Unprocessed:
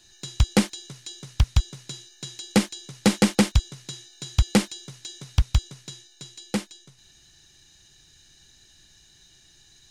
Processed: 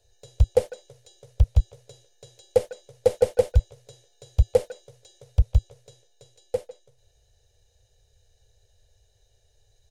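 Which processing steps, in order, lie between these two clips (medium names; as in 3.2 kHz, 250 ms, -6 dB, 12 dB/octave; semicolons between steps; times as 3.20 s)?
FFT filter 110 Hz 0 dB, 170 Hz -28 dB, 330 Hz -23 dB, 480 Hz +10 dB, 1.1 kHz -18 dB, 5 kHz -18 dB, 7.5 kHz -16 dB, 12 kHz -11 dB; speakerphone echo 150 ms, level -16 dB; trim +1.5 dB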